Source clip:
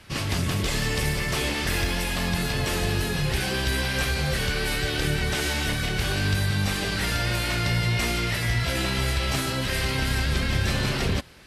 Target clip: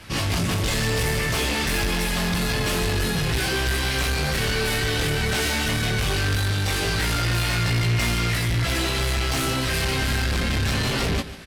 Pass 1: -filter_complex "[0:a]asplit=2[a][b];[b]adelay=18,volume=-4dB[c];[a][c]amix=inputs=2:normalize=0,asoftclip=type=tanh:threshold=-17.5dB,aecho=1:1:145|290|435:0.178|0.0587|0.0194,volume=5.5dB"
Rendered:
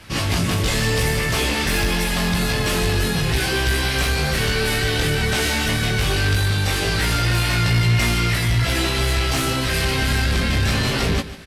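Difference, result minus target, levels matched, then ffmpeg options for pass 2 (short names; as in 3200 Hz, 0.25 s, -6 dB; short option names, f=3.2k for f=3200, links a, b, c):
soft clip: distortion -8 dB
-filter_complex "[0:a]asplit=2[a][b];[b]adelay=18,volume=-4dB[c];[a][c]amix=inputs=2:normalize=0,asoftclip=type=tanh:threshold=-25dB,aecho=1:1:145|290|435:0.178|0.0587|0.0194,volume=5.5dB"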